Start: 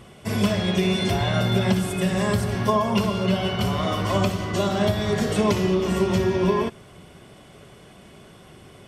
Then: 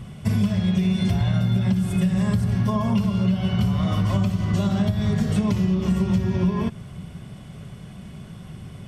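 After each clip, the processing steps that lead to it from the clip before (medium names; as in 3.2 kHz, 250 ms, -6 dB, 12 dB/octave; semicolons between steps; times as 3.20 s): resonant low shelf 250 Hz +10.5 dB, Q 1.5; compression, threshold -18 dBFS, peak gain reduction 12.5 dB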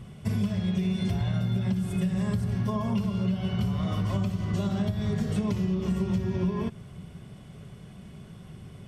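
peaking EQ 410 Hz +4 dB 0.53 oct; trim -6.5 dB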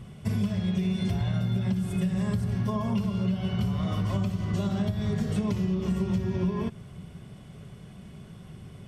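no audible change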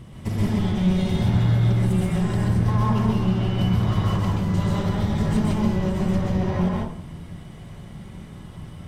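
comb filter that takes the minimum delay 1 ms; plate-style reverb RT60 0.59 s, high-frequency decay 0.5×, pre-delay 115 ms, DRR -3.5 dB; trim +2 dB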